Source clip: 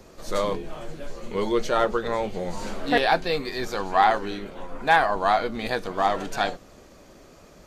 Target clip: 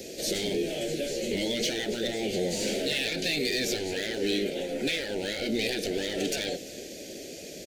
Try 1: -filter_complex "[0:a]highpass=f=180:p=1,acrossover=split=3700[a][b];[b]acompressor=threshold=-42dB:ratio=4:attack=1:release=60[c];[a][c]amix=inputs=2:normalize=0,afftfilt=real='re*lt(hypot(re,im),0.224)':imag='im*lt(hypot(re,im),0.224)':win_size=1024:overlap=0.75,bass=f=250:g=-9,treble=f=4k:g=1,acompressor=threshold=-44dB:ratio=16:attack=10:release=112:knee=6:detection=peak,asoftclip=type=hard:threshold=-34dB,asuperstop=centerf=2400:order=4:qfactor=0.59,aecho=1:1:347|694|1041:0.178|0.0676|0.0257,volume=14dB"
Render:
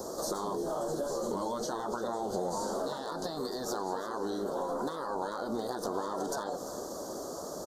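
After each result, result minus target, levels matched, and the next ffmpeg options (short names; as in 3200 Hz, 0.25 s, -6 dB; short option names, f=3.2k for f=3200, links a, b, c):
1000 Hz band +16.5 dB; compressor: peak gain reduction +9 dB; echo-to-direct +6.5 dB
-filter_complex "[0:a]highpass=f=180:p=1,acrossover=split=3700[a][b];[b]acompressor=threshold=-42dB:ratio=4:attack=1:release=60[c];[a][c]amix=inputs=2:normalize=0,afftfilt=real='re*lt(hypot(re,im),0.224)':imag='im*lt(hypot(re,im),0.224)':win_size=1024:overlap=0.75,bass=f=250:g=-9,treble=f=4k:g=1,acompressor=threshold=-44dB:ratio=16:attack=10:release=112:knee=6:detection=peak,asoftclip=type=hard:threshold=-34dB,asuperstop=centerf=1100:order=4:qfactor=0.59,aecho=1:1:347|694|1041:0.178|0.0676|0.0257,volume=14dB"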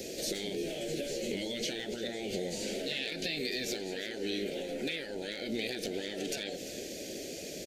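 compressor: peak gain reduction +9 dB; echo-to-direct +6.5 dB
-filter_complex "[0:a]highpass=f=180:p=1,acrossover=split=3700[a][b];[b]acompressor=threshold=-42dB:ratio=4:attack=1:release=60[c];[a][c]amix=inputs=2:normalize=0,afftfilt=real='re*lt(hypot(re,im),0.224)':imag='im*lt(hypot(re,im),0.224)':win_size=1024:overlap=0.75,bass=f=250:g=-9,treble=f=4k:g=1,acompressor=threshold=-34.5dB:ratio=16:attack=10:release=112:knee=6:detection=peak,asoftclip=type=hard:threshold=-34dB,asuperstop=centerf=1100:order=4:qfactor=0.59,aecho=1:1:347|694|1041:0.178|0.0676|0.0257,volume=14dB"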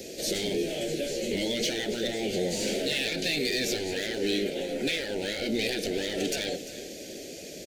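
echo-to-direct +6.5 dB
-filter_complex "[0:a]highpass=f=180:p=1,acrossover=split=3700[a][b];[b]acompressor=threshold=-42dB:ratio=4:attack=1:release=60[c];[a][c]amix=inputs=2:normalize=0,afftfilt=real='re*lt(hypot(re,im),0.224)':imag='im*lt(hypot(re,im),0.224)':win_size=1024:overlap=0.75,bass=f=250:g=-9,treble=f=4k:g=1,acompressor=threshold=-34.5dB:ratio=16:attack=10:release=112:knee=6:detection=peak,asoftclip=type=hard:threshold=-34dB,asuperstop=centerf=1100:order=4:qfactor=0.59,aecho=1:1:347|694|1041:0.0841|0.032|0.0121,volume=14dB"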